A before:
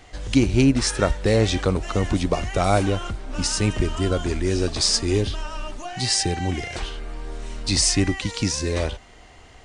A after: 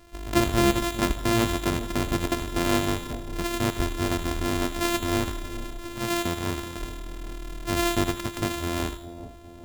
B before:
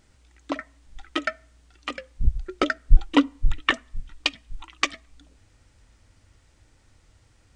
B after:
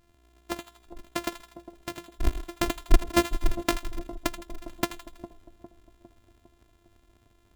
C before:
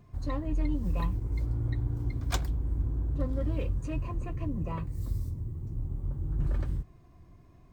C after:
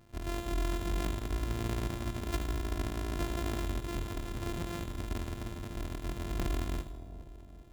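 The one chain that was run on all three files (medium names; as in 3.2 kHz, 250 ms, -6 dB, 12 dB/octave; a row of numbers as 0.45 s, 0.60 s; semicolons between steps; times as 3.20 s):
sorted samples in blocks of 128 samples; two-band feedback delay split 800 Hz, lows 405 ms, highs 81 ms, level -12 dB; trim -4.5 dB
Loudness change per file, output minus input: -4.5 LU, -4.5 LU, -3.5 LU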